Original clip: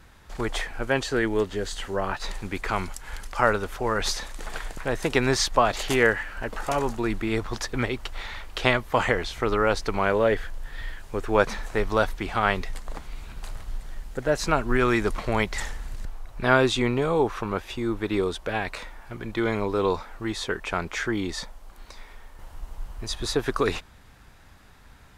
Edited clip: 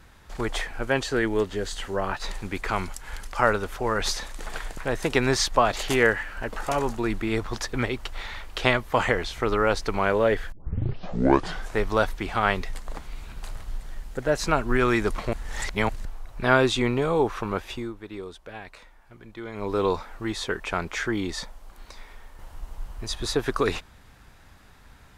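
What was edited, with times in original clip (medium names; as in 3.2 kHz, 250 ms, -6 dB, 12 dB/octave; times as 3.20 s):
10.52 s: tape start 1.22 s
15.33–15.89 s: reverse
17.73–19.73 s: dip -12 dB, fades 0.20 s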